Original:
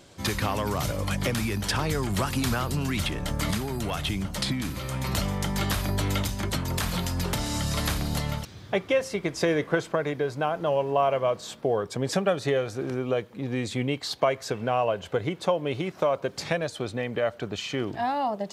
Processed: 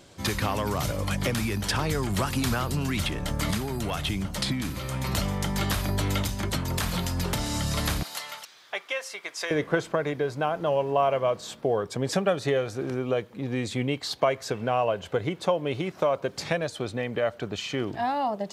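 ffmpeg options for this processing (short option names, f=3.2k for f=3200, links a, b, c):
-filter_complex "[0:a]asettb=1/sr,asplit=3[a][b][c];[a]atrim=end=8.034[d];[b]atrim=start=8.03:end=9.51,asetpts=PTS-STARTPTS,afade=t=in:d=0.004:c=qsin,afade=t=out:st=1.476:d=0.004:c=qsin,highpass=1k[e];[c]atrim=start=9.506[f];[d][e]acrossfade=d=0.004:c1=hsin:c2=qsin[g];[g][f]acrossfade=d=0.004:c1=qsin:c2=hsin"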